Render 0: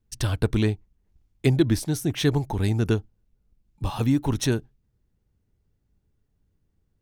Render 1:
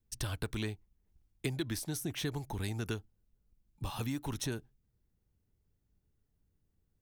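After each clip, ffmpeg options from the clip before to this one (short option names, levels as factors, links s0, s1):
-filter_complex "[0:a]highshelf=f=9600:g=8,acrossover=split=550|1100[s0][s1][s2];[s0]acompressor=threshold=0.0355:ratio=4[s3];[s1]acompressor=threshold=0.00708:ratio=4[s4];[s2]acompressor=threshold=0.0282:ratio=4[s5];[s3][s4][s5]amix=inputs=3:normalize=0,volume=0.473"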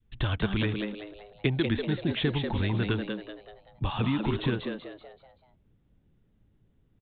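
-filter_complex "[0:a]aresample=8000,aresample=44100,asplit=6[s0][s1][s2][s3][s4][s5];[s1]adelay=191,afreqshift=100,volume=0.531[s6];[s2]adelay=382,afreqshift=200,volume=0.207[s7];[s3]adelay=573,afreqshift=300,volume=0.0804[s8];[s4]adelay=764,afreqshift=400,volume=0.0316[s9];[s5]adelay=955,afreqshift=500,volume=0.0123[s10];[s0][s6][s7][s8][s9][s10]amix=inputs=6:normalize=0,adynamicequalizer=threshold=0.00251:dfrequency=650:dqfactor=1:tfrequency=650:tqfactor=1:attack=5:release=100:ratio=0.375:range=2:mode=cutabove:tftype=bell,volume=2.82"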